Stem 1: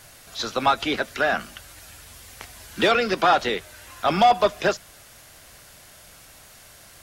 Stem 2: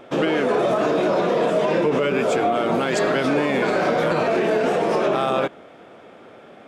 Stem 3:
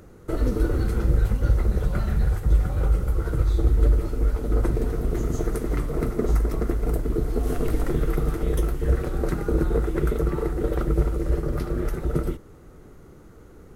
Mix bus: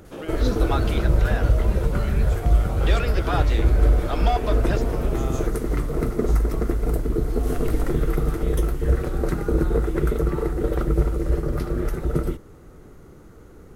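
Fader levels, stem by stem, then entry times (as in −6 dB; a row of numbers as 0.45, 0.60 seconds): −9.0, −14.5, +1.5 decibels; 0.05, 0.00, 0.00 seconds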